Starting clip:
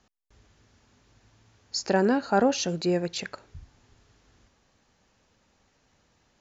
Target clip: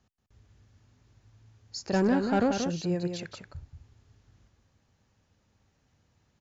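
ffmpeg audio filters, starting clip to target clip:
-filter_complex "[0:a]asettb=1/sr,asplit=3[a][b][c];[a]atrim=end=1.934[d];[b]atrim=start=1.93:end=2.53,asetpts=PTS-STARTPTS,afade=t=in:d=0.004:c=qsin,afade=t=out:st=0.596:d=0.004:c=qsin,acontrast=35[e];[c]atrim=start=2.526[f];[d][e]acrossfade=d=0.004:c1=hsin:c2=qsin[g];[g][f]acrossfade=d=0.004:c1=qsin:c2=hsin,asoftclip=type=tanh:threshold=-12.5dB,equalizer=f=98:w=0.74:g=12,aecho=1:1:182:0.473,volume=-8dB"

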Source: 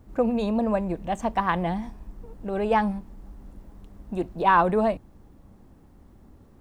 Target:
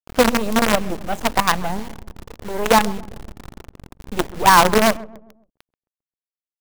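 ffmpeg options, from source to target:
-filter_complex "[0:a]lowpass=f=3.5k:p=1,acrusher=bits=4:dc=4:mix=0:aa=0.000001,asplit=2[a][b];[b]adelay=133,lowpass=f=810:p=1,volume=-17dB,asplit=2[c][d];[d]adelay=133,lowpass=f=810:p=1,volume=0.48,asplit=2[e][f];[f]adelay=133,lowpass=f=810:p=1,volume=0.48,asplit=2[g][h];[h]adelay=133,lowpass=f=810:p=1,volume=0.48[i];[a][c][e][g][i]amix=inputs=5:normalize=0,volume=7dB"

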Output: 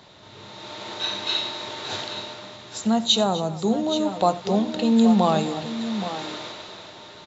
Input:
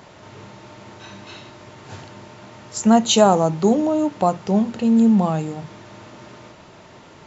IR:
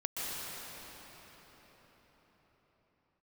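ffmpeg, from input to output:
-filter_complex "[0:a]equalizer=f=3.8k:t=o:w=0.39:g=14.5,acrossover=split=290[a][b];[b]dynaudnorm=f=100:g=13:m=14dB[c];[a][c]amix=inputs=2:normalize=0,aecho=1:1:88|251|817|827:0.119|0.15|0.141|0.251,volume=-6.5dB"

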